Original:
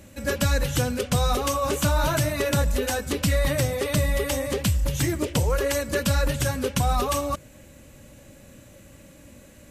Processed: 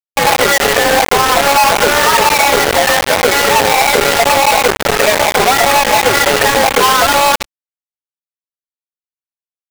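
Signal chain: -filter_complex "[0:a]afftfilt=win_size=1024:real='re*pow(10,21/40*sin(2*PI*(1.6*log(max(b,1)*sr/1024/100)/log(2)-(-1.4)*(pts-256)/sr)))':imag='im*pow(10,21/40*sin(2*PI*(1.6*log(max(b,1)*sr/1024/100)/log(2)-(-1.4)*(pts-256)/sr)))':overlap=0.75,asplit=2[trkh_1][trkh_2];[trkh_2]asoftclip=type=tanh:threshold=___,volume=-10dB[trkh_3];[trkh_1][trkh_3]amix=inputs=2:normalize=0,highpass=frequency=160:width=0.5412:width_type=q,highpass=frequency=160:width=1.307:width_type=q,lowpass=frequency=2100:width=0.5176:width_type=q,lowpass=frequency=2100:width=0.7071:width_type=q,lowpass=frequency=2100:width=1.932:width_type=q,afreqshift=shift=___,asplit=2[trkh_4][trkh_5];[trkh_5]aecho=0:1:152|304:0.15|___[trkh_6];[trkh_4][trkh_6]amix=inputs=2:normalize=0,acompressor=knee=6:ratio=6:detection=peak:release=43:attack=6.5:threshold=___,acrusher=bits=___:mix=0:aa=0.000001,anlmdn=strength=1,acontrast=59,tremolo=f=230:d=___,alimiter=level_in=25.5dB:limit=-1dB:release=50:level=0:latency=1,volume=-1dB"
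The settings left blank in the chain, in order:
-12.5dB, 280, 0.0224, -31dB, 4, 0.519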